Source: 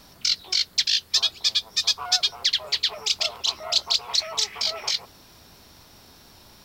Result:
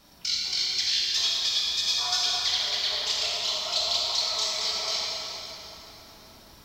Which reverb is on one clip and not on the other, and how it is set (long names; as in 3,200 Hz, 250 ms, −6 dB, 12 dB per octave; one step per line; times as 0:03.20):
dense smooth reverb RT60 4 s, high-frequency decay 0.7×, DRR −6.5 dB
level −8.5 dB